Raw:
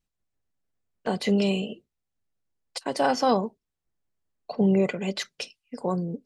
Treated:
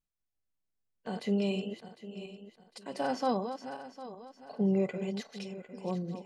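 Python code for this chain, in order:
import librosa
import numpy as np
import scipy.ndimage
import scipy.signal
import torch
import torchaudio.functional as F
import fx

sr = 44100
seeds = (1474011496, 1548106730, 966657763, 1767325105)

y = fx.reverse_delay_fb(x, sr, ms=377, feedback_pct=52, wet_db=-9.5)
y = fx.hpss(y, sr, part='percussive', gain_db=-8)
y = y * librosa.db_to_amplitude(-6.5)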